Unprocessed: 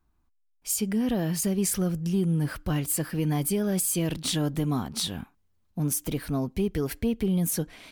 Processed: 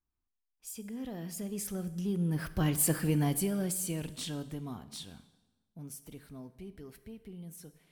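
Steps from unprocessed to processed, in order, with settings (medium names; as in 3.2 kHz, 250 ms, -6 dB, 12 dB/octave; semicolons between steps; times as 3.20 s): Doppler pass-by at 2.91 s, 13 m/s, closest 4.8 m; plate-style reverb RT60 1.2 s, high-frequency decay 0.85×, DRR 12.5 dB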